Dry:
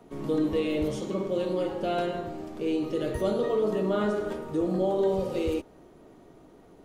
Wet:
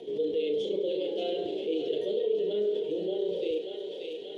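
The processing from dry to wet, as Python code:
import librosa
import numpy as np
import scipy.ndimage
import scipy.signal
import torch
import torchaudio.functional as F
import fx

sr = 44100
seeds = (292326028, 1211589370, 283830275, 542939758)

y = fx.rider(x, sr, range_db=10, speed_s=0.5)
y = fx.double_bandpass(y, sr, hz=1200.0, octaves=2.9)
y = fx.stretch_grains(y, sr, factor=0.64, grain_ms=68.0)
y = fx.doubler(y, sr, ms=34.0, db=-11.0)
y = fx.echo_thinned(y, sr, ms=585, feedback_pct=66, hz=880.0, wet_db=-9.0)
y = fx.env_flatten(y, sr, amount_pct=50)
y = y * 10.0 ** (3.5 / 20.0)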